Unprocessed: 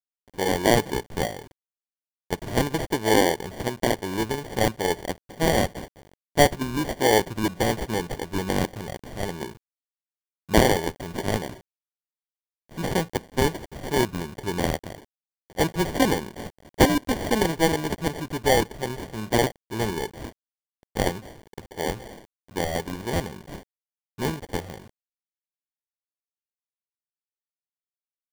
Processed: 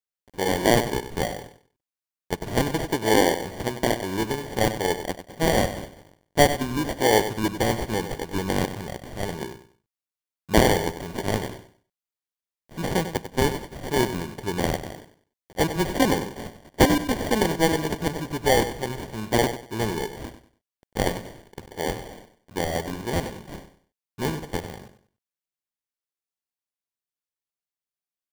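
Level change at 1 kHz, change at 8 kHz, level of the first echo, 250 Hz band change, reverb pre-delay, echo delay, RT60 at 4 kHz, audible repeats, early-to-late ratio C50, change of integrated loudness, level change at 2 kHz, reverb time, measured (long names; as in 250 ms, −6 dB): +0.5 dB, +0.5 dB, −11.0 dB, +0.5 dB, no reverb audible, 96 ms, no reverb audible, 3, no reverb audible, +0.5 dB, +0.5 dB, no reverb audible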